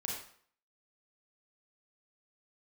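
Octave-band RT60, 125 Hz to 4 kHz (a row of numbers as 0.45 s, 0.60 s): 0.50 s, 0.55 s, 0.55 s, 0.55 s, 0.50 s, 0.50 s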